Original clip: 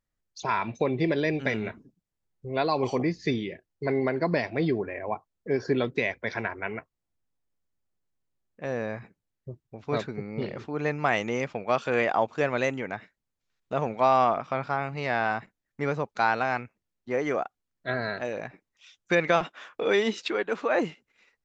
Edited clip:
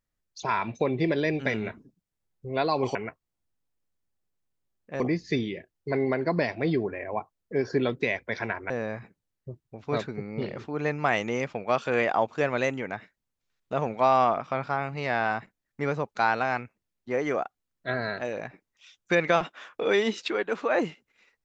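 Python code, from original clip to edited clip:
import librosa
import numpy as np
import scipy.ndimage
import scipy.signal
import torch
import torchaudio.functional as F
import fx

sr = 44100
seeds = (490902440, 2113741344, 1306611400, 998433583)

y = fx.edit(x, sr, fx.move(start_s=6.65, length_s=2.05, to_s=2.95), tone=tone)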